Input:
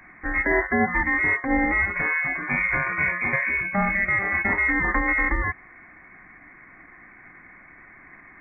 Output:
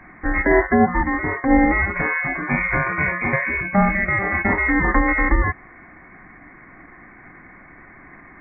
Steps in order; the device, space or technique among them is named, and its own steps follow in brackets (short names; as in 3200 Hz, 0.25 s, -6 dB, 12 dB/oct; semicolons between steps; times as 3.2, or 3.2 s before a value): 0.74–1.37 Chebyshev low-pass 1300 Hz, order 2; through cloth (high shelf 2300 Hz -17 dB); gain +8.5 dB